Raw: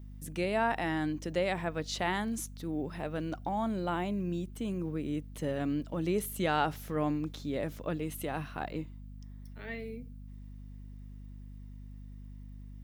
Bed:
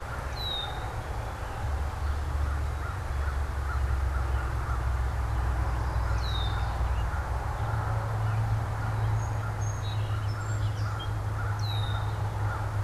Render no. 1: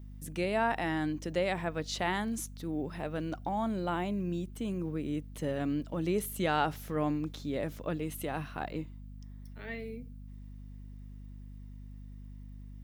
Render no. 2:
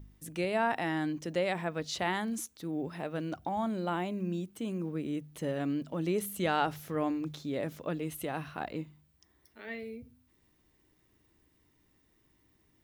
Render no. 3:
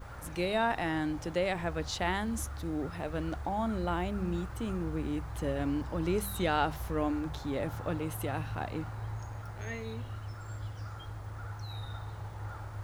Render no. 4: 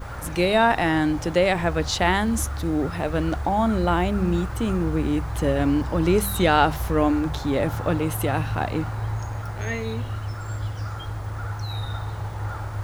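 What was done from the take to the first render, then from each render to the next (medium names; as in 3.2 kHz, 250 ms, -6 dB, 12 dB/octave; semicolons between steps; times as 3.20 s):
no audible change
de-hum 50 Hz, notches 5
add bed -11 dB
trim +11 dB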